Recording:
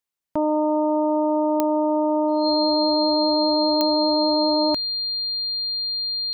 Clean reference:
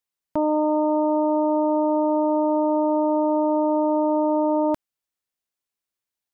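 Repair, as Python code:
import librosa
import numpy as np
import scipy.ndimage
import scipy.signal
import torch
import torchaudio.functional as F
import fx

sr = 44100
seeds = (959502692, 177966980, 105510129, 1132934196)

y = fx.fix_declick_ar(x, sr, threshold=10.0)
y = fx.notch(y, sr, hz=4200.0, q=30.0)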